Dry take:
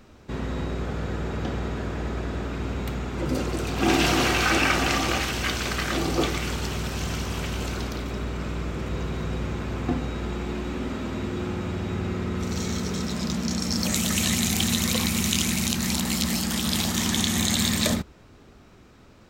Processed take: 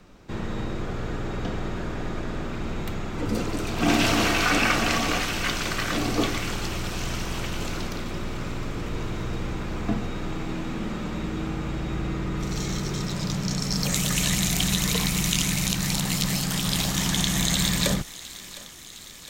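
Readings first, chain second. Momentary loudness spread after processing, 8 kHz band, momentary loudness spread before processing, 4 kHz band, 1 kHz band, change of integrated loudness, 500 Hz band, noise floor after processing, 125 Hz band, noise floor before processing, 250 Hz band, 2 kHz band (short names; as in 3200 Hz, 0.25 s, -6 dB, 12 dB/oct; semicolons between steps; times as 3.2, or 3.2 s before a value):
11 LU, 0.0 dB, 10 LU, 0.0 dB, -0.5 dB, -0.5 dB, -1.5 dB, -42 dBFS, +0.5 dB, -51 dBFS, -1.0 dB, 0.0 dB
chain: frequency shift -40 Hz; thinning echo 0.71 s, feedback 71%, high-pass 930 Hz, level -16 dB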